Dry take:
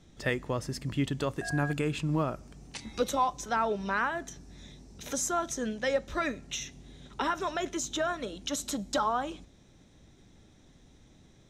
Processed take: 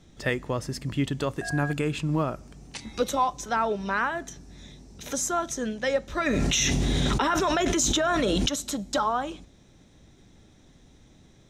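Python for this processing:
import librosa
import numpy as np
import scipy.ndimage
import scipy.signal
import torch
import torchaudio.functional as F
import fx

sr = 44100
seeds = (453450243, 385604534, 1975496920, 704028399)

y = fx.env_flatten(x, sr, amount_pct=100, at=(6.26, 8.49))
y = F.gain(torch.from_numpy(y), 3.0).numpy()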